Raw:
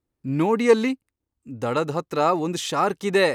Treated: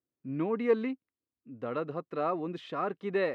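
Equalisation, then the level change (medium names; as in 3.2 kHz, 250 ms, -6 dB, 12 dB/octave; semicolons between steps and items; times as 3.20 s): high-pass 160 Hz 12 dB/octave; Butterworth band-stop 860 Hz, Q 6.8; distance through air 410 m; -8.5 dB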